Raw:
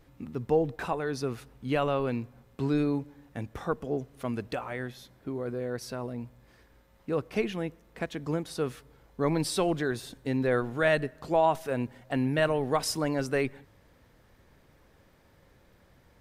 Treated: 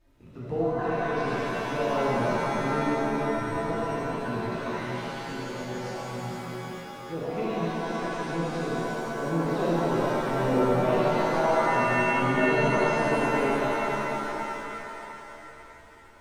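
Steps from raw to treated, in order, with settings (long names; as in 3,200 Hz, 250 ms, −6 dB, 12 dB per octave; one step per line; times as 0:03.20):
treble cut that deepens with the level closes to 2,300 Hz, closed at −26 dBFS
flanger swept by the level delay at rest 3.4 ms, full sweep at −25.5 dBFS
reverb with rising layers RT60 3.5 s, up +7 semitones, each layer −2 dB, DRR −8.5 dB
level −7 dB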